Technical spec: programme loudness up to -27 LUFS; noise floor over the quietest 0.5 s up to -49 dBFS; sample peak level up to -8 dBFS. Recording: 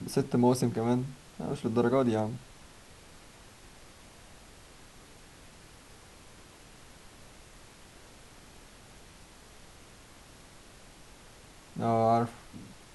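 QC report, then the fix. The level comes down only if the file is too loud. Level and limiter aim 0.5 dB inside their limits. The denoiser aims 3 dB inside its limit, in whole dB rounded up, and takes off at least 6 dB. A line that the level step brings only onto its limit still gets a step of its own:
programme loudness -29.0 LUFS: pass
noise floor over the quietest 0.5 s -53 dBFS: pass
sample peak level -13.5 dBFS: pass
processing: none needed

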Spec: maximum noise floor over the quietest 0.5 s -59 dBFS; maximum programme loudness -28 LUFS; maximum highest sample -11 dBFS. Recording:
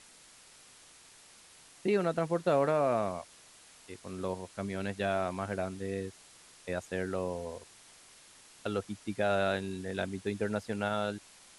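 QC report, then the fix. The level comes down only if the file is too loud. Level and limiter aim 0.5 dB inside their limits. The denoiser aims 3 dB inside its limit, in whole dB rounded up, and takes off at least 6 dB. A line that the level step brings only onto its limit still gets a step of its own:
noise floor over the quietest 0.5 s -57 dBFS: fail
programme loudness -33.5 LUFS: pass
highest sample -16.5 dBFS: pass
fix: noise reduction 6 dB, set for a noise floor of -57 dBFS

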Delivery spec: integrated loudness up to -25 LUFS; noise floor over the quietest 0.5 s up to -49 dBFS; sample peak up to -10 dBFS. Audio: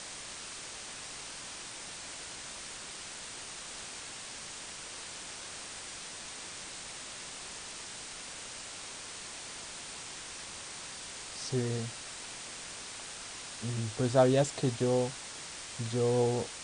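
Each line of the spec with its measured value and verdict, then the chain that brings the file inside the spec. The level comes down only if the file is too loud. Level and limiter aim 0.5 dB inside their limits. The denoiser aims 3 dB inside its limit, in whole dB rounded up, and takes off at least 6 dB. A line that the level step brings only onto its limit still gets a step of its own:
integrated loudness -36.5 LUFS: pass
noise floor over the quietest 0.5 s -44 dBFS: fail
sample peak -13.0 dBFS: pass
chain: noise reduction 8 dB, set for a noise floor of -44 dBFS

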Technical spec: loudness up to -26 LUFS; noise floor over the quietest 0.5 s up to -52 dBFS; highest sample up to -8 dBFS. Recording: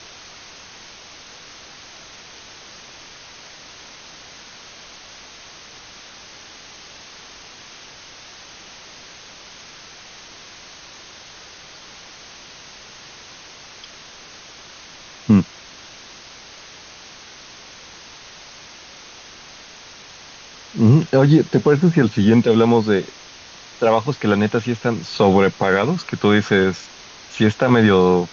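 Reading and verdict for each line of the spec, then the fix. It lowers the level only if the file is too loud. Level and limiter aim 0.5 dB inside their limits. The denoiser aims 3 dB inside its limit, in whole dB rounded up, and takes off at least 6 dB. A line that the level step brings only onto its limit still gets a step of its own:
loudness -16.5 LUFS: fail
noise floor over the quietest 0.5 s -42 dBFS: fail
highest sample -3.5 dBFS: fail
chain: noise reduction 6 dB, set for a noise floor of -42 dBFS; trim -10 dB

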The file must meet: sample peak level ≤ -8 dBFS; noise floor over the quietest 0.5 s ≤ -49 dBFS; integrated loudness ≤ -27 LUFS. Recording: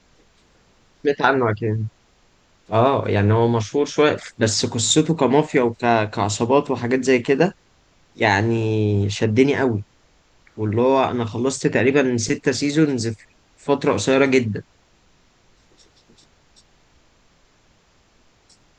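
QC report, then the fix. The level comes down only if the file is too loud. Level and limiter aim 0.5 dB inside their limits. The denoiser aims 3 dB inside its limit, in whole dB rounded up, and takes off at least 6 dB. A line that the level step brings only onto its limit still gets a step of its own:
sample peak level -2.5 dBFS: fail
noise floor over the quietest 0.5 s -58 dBFS: pass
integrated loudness -19.5 LUFS: fail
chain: trim -8 dB

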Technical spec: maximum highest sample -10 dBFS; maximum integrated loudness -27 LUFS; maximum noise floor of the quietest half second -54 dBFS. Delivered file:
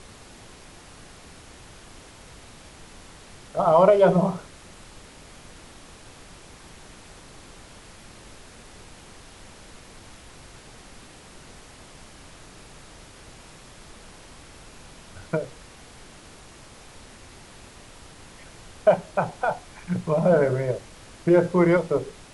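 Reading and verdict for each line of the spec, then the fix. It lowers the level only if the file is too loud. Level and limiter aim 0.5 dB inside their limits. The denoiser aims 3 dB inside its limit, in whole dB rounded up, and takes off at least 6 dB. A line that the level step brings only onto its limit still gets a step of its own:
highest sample -6.0 dBFS: fail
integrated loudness -22.0 LUFS: fail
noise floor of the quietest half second -47 dBFS: fail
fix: noise reduction 6 dB, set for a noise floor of -47 dBFS; trim -5.5 dB

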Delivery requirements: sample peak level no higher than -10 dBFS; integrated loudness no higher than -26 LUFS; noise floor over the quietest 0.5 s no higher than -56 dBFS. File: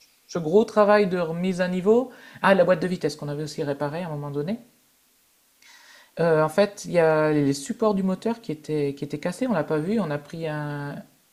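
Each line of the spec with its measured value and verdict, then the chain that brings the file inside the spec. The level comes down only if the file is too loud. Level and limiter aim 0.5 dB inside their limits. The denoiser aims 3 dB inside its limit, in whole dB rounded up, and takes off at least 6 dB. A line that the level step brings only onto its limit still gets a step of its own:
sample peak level -4.0 dBFS: fail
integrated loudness -24.0 LUFS: fail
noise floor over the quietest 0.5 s -63 dBFS: pass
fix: trim -2.5 dB; peak limiter -10.5 dBFS

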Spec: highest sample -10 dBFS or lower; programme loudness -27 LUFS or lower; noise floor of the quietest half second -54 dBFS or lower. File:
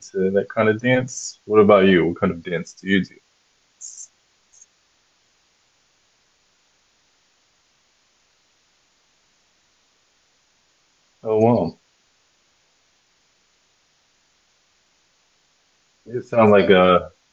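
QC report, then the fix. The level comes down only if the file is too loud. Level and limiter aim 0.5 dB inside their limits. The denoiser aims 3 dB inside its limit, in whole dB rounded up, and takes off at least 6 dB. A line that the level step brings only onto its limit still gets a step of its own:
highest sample -1.5 dBFS: fail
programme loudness -18.0 LUFS: fail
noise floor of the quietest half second -63 dBFS: pass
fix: trim -9.5 dB

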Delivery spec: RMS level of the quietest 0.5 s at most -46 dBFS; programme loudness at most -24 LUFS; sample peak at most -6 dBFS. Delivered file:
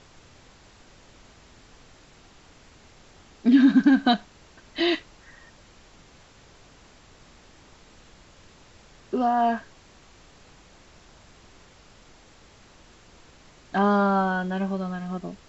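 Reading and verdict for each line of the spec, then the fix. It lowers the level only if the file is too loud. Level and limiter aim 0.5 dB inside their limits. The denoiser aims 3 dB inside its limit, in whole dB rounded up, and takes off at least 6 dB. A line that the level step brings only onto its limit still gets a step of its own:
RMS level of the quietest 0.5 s -53 dBFS: pass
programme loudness -23.0 LUFS: fail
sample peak -8.0 dBFS: pass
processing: trim -1.5 dB

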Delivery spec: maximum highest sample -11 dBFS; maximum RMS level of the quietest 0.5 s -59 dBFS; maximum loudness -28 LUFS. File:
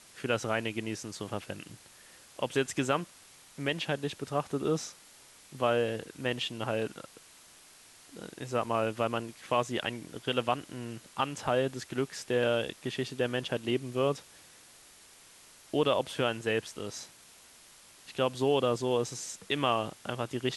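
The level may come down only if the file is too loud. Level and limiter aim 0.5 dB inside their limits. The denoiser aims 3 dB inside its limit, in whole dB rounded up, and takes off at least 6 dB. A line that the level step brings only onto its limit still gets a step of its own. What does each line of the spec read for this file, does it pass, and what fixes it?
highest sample -13.5 dBFS: pass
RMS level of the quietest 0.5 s -56 dBFS: fail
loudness -32.0 LUFS: pass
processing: noise reduction 6 dB, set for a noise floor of -56 dBFS

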